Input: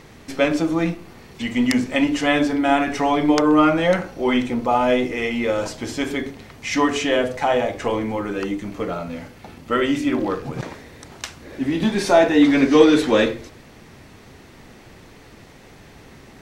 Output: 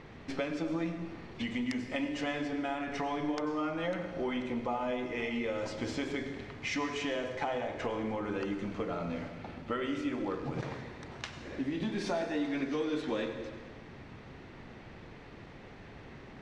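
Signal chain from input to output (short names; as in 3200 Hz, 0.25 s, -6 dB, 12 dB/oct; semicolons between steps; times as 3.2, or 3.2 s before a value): compressor 6:1, threshold -27 dBFS, peak gain reduction 18.5 dB; low-pass opened by the level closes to 2900 Hz, open at -18.5 dBFS; on a send: reverb RT60 1.6 s, pre-delay 82 ms, DRR 8 dB; on the sum: gain -5 dB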